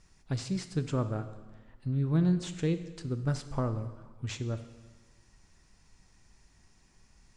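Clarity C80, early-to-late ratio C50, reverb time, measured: 13.5 dB, 11.5 dB, 1.4 s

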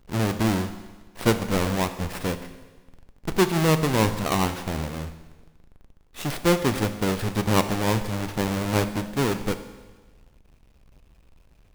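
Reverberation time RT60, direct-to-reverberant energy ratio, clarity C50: 1.3 s, 9.0 dB, 11.0 dB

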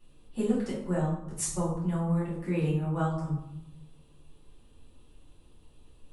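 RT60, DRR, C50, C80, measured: 0.90 s, -8.5 dB, 3.0 dB, 6.5 dB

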